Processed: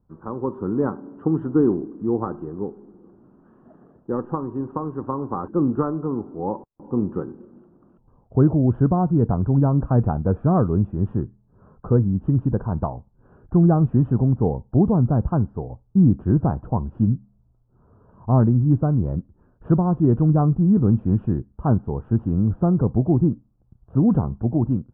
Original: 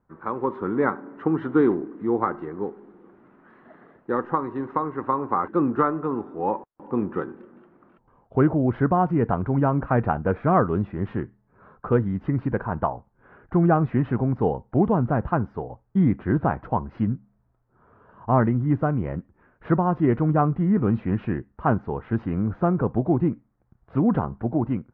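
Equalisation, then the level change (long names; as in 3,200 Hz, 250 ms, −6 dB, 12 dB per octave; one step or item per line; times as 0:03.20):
moving average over 21 samples
high-frequency loss of the air 64 metres
low-shelf EQ 240 Hz +11.5 dB
−2.5 dB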